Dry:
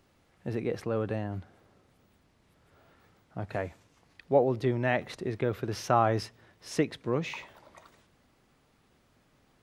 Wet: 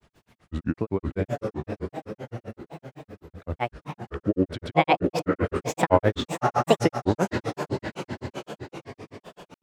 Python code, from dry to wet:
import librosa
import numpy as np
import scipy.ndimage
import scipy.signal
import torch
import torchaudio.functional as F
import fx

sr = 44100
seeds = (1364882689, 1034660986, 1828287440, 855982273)

y = fx.echo_diffused(x, sr, ms=560, feedback_pct=53, wet_db=-3.5)
y = fx.granulator(y, sr, seeds[0], grain_ms=100.0, per_s=7.8, spray_ms=100.0, spread_st=7)
y = F.gain(torch.from_numpy(y), 8.5).numpy()